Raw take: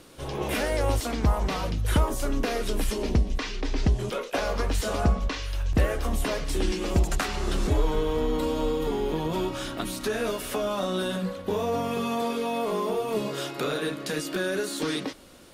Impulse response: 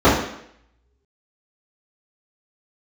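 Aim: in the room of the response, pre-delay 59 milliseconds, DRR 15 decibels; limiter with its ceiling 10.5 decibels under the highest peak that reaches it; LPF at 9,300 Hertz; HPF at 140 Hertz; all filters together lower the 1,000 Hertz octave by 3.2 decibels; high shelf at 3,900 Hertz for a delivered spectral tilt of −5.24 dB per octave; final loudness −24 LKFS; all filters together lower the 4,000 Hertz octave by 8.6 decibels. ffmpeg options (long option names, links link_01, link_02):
-filter_complex "[0:a]highpass=140,lowpass=9300,equalizer=frequency=1000:width_type=o:gain=-3.5,highshelf=frequency=3900:gain=-5,equalizer=frequency=4000:width_type=o:gain=-8,alimiter=limit=-23dB:level=0:latency=1,asplit=2[link_01][link_02];[1:a]atrim=start_sample=2205,adelay=59[link_03];[link_02][link_03]afir=irnorm=-1:irlink=0,volume=-42dB[link_04];[link_01][link_04]amix=inputs=2:normalize=0,volume=8.5dB"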